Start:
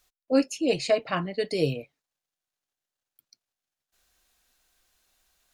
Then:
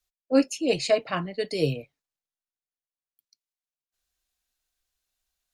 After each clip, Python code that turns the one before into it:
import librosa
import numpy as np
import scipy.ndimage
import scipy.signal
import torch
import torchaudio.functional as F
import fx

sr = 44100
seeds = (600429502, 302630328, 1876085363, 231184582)

y = fx.band_widen(x, sr, depth_pct=40)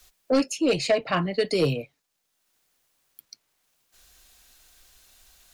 y = 10.0 ** (-17.0 / 20.0) * np.tanh(x / 10.0 ** (-17.0 / 20.0))
y = fx.band_squash(y, sr, depth_pct=70)
y = y * librosa.db_to_amplitude(4.0)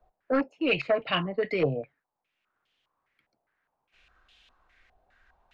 y = fx.filter_held_lowpass(x, sr, hz=4.9, low_hz=730.0, high_hz=3100.0)
y = y * librosa.db_to_amplitude(-5.0)